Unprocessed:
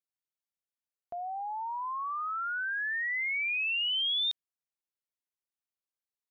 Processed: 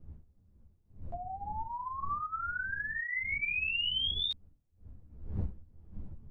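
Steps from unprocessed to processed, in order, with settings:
wind on the microphone 85 Hz −42 dBFS
string-ensemble chorus

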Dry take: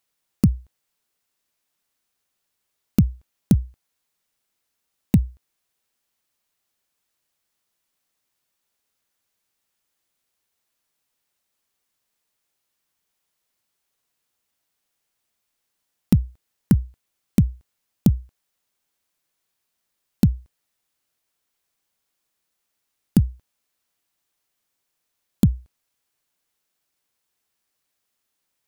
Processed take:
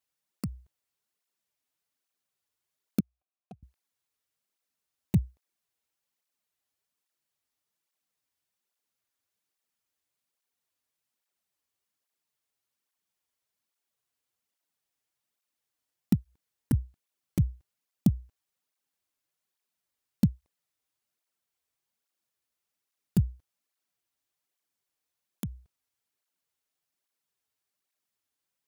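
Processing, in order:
0:03.00–0:03.63: formant filter a
through-zero flanger with one copy inverted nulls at 1.2 Hz, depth 6.1 ms
level −5.5 dB

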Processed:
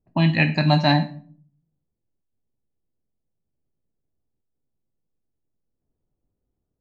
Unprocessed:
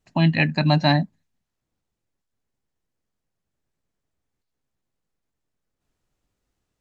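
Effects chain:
low-pass that shuts in the quiet parts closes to 530 Hz, open at −17.5 dBFS
on a send: spectral tilt +2.5 dB per octave + convolution reverb RT60 0.50 s, pre-delay 8 ms, DRR 6.5 dB

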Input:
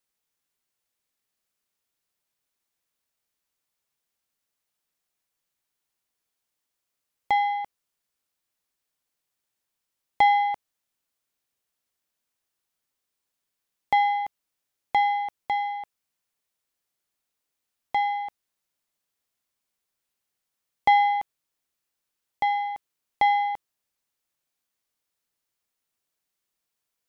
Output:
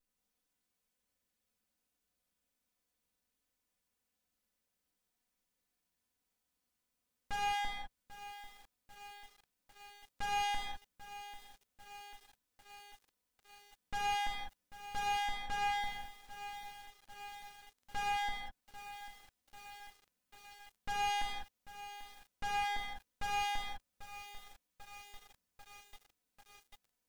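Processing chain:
lower of the sound and its delayed copy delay 4 ms
low-shelf EQ 430 Hz +10 dB
brickwall limiter −16 dBFS, peak gain reduction 11 dB
gain into a clipping stage and back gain 30 dB
reverb whose tail is shaped and stops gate 230 ms flat, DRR −3 dB
feedback echo at a low word length 792 ms, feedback 80%, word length 7 bits, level −13 dB
level −7 dB

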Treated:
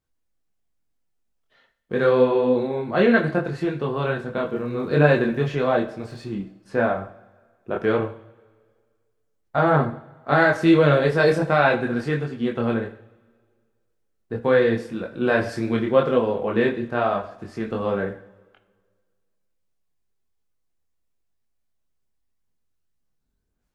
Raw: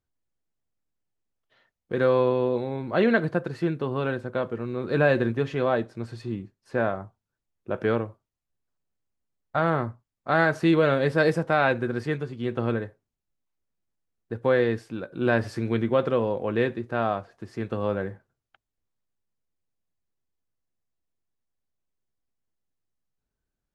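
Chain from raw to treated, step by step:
0:04.35–0:06.25: surface crackle 77 per second −49 dBFS
multi-voice chorus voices 6, 0.88 Hz, delay 24 ms, depth 3.8 ms
coupled-rooms reverb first 0.58 s, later 1.8 s, from −16 dB, DRR 9 dB
level +6.5 dB

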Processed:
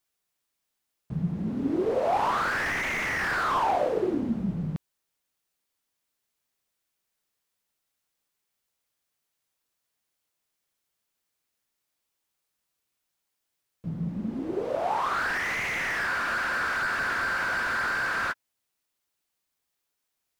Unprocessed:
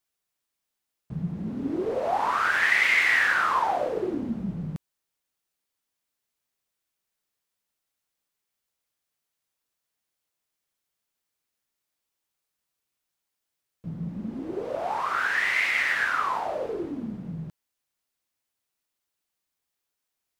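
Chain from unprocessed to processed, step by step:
frozen spectrum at 0:16.09, 2.23 s
slew-rate limiting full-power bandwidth 60 Hz
level +2 dB

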